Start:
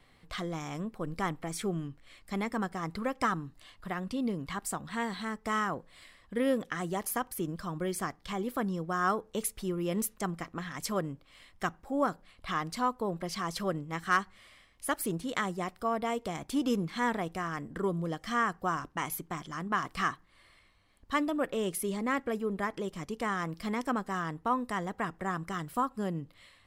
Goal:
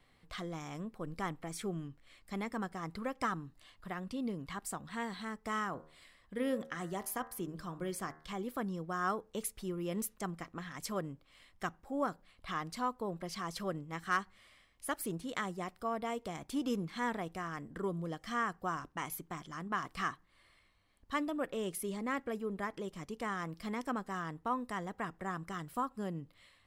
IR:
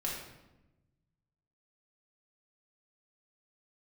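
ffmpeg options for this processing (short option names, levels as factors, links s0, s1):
-filter_complex "[0:a]asettb=1/sr,asplit=3[s0][s1][s2];[s0]atrim=end=5.694[s3];[s1]atrim=start=5.69:end=8.33,asetpts=PTS-STARTPTS,afade=t=in:d=0.004:c=qsin,afade=t=out:st=2.636:d=0.004:c=qsin,bandreject=f=77.64:t=h:w=4,bandreject=f=155.28:t=h:w=4,bandreject=f=232.92:t=h:w=4,bandreject=f=310.56:t=h:w=4,bandreject=f=388.2:t=h:w=4,bandreject=f=465.84:t=h:w=4,bandreject=f=543.48:t=h:w=4,bandreject=f=621.12:t=h:w=4,bandreject=f=698.76:t=h:w=4,bandreject=f=776.4:t=h:w=4,bandreject=f=854.04:t=h:w=4,bandreject=f=931.68:t=h:w=4,bandreject=f=1009.32:t=h:w=4,bandreject=f=1086.96:t=h:w=4,bandreject=f=1164.6:t=h:w=4,bandreject=f=1242.24:t=h:w=4,bandreject=f=1319.88:t=h:w=4,bandreject=f=1397.52:t=h:w=4,bandreject=f=1475.16:t=h:w=4,bandreject=f=1552.8:t=h:w=4,bandreject=f=1630.44:t=h:w=4,bandreject=f=1708.08:t=h:w=4,bandreject=f=1785.72:t=h:w=4,bandreject=f=1863.36:t=h:w=4,bandreject=f=1941:t=h:w=4,bandreject=f=2018.64:t=h:w=4,bandreject=f=2096.28:t=h:w=4[s4];[s2]atrim=start=8.326[s5];[s3][s4]acrossfade=d=0.004:c1=hsin:c2=qsin[s6];[s6][s5]acrossfade=d=0.004:c1=qsin:c2=hsin,volume=0.531"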